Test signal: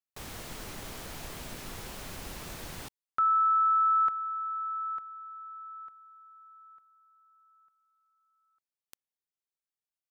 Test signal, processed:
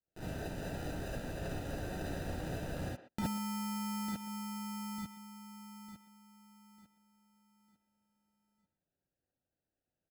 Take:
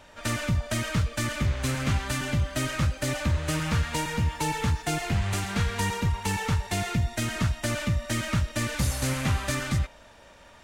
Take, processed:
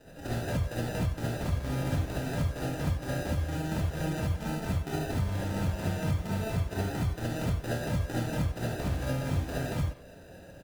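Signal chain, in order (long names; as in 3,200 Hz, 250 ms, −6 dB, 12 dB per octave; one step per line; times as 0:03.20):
downward compressor 4 to 1, threshold −32 dBFS
decimation without filtering 40×
far-end echo of a speakerphone 120 ms, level −12 dB
harmonic generator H 7 −37 dB, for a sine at −21.5 dBFS
reverb whose tail is shaped and stops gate 90 ms rising, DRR −7 dB
level −5.5 dB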